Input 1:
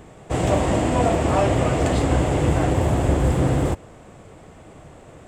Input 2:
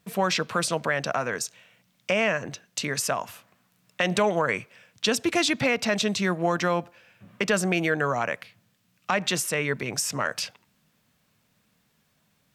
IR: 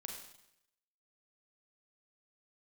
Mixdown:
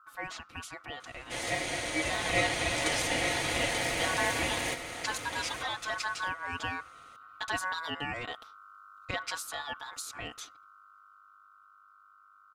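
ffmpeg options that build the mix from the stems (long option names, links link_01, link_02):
-filter_complex "[0:a]highpass=1100,adelay=1000,volume=-4dB,asplit=2[link_01][link_02];[link_02]volume=-8.5dB[link_03];[1:a]aeval=exprs='val(0)+0.01*(sin(2*PI*50*n/s)+sin(2*PI*2*50*n/s)/2+sin(2*PI*3*50*n/s)/3+sin(2*PI*4*50*n/s)/4+sin(2*PI*5*50*n/s)/5)':channel_layout=same,volume=-17dB[link_04];[link_03]aecho=0:1:885:1[link_05];[link_01][link_04][link_05]amix=inputs=3:normalize=0,aecho=1:1:5.1:0.86,dynaudnorm=framelen=250:gausssize=21:maxgain=6.5dB,aeval=exprs='val(0)*sin(2*PI*1300*n/s)':channel_layout=same"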